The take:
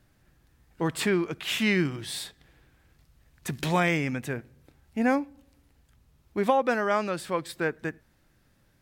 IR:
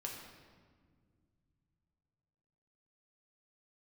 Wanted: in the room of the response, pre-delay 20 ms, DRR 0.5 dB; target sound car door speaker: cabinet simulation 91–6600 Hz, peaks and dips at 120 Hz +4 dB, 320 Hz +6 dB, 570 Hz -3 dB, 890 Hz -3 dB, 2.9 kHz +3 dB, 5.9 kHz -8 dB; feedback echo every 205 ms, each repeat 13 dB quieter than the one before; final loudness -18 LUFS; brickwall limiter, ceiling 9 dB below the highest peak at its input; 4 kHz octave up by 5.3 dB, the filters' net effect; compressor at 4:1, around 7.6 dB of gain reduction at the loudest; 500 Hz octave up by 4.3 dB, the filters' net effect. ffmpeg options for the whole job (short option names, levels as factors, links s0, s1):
-filter_complex "[0:a]equalizer=f=500:t=o:g=5.5,equalizer=f=4000:t=o:g=5.5,acompressor=threshold=0.0631:ratio=4,alimiter=limit=0.075:level=0:latency=1,aecho=1:1:205|410|615:0.224|0.0493|0.0108,asplit=2[s0][s1];[1:a]atrim=start_sample=2205,adelay=20[s2];[s1][s2]afir=irnorm=-1:irlink=0,volume=1.06[s3];[s0][s3]amix=inputs=2:normalize=0,highpass=91,equalizer=f=120:t=q:w=4:g=4,equalizer=f=320:t=q:w=4:g=6,equalizer=f=570:t=q:w=4:g=-3,equalizer=f=890:t=q:w=4:g=-3,equalizer=f=2900:t=q:w=4:g=3,equalizer=f=5900:t=q:w=4:g=-8,lowpass=f=6600:w=0.5412,lowpass=f=6600:w=1.3066,volume=3.76"